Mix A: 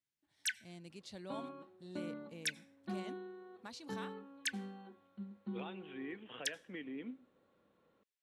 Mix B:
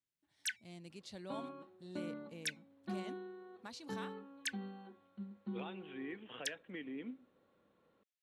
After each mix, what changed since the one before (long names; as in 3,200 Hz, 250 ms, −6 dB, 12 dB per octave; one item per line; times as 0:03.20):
first sound: send off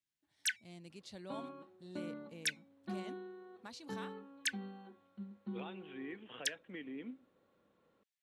first sound +4.0 dB
reverb: off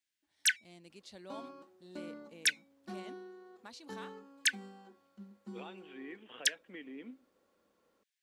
first sound +7.0 dB
second sound: remove linear-phase brick-wall low-pass 4,400 Hz
master: add parametric band 130 Hz −11.5 dB 0.89 octaves